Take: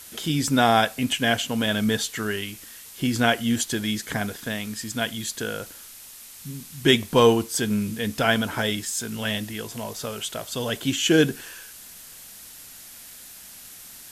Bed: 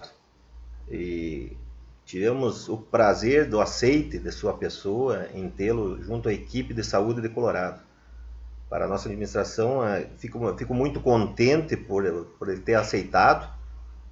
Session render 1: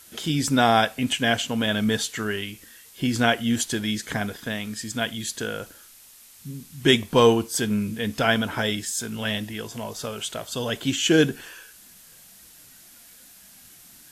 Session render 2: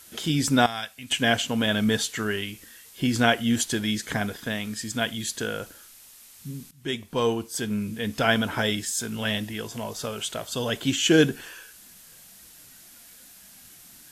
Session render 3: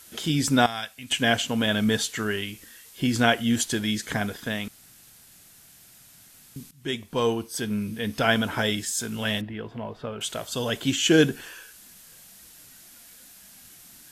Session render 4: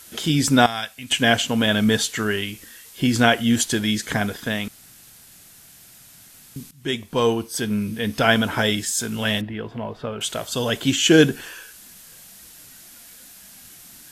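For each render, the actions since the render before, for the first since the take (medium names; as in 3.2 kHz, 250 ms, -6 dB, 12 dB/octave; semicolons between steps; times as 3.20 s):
noise print and reduce 6 dB
0.66–1.11 s: amplifier tone stack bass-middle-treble 5-5-5; 6.71–8.46 s: fade in linear, from -16.5 dB
4.68–6.56 s: room tone; 7.31–8.24 s: band-stop 7.2 kHz, Q 6.7; 9.41–10.21 s: distance through air 470 m
trim +4.5 dB; peak limiter -2 dBFS, peak gain reduction 1.5 dB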